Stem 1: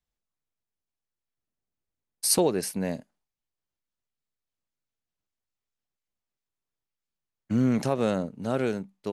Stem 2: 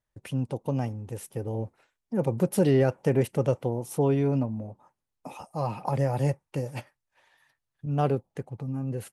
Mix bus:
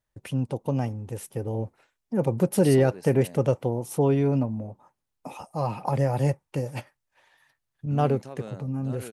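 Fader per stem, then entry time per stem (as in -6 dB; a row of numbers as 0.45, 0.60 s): -14.5, +2.0 dB; 0.40, 0.00 s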